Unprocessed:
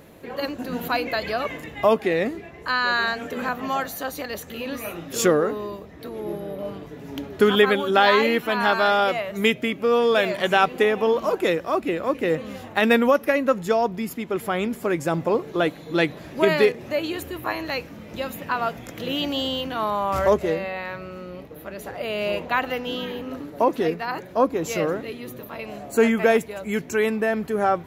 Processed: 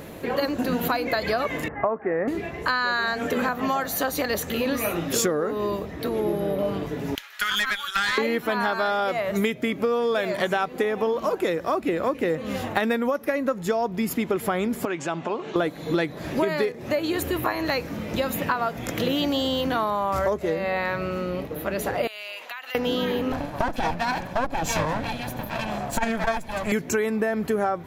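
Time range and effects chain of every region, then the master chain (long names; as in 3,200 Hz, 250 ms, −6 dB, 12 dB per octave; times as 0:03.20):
0:01.68–0:02.28: Butterworth low-pass 1,700 Hz + low-shelf EQ 500 Hz −8 dB
0:07.15–0:08.18: high-pass filter 1,400 Hz 24 dB per octave + tube saturation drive 18 dB, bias 0.4
0:14.85–0:15.56: downward compressor 2.5 to 1, threshold −31 dBFS + loudspeaker in its box 260–6,600 Hz, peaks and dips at 300 Hz −5 dB, 500 Hz −10 dB, 2,000 Hz −3 dB, 2,900 Hz +5 dB, 5,100 Hz −7 dB
0:22.07–0:22.75: Bessel high-pass filter 2,000 Hz + downward compressor 8 to 1, threshold −40 dBFS
0:23.32–0:26.72: lower of the sound and its delayed copy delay 1.2 ms + high-shelf EQ 11,000 Hz −9 dB + saturating transformer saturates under 110 Hz
whole clip: dynamic equaliser 2,800 Hz, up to −7 dB, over −43 dBFS, Q 3.4; downward compressor 12 to 1, threshold −29 dBFS; level +8.5 dB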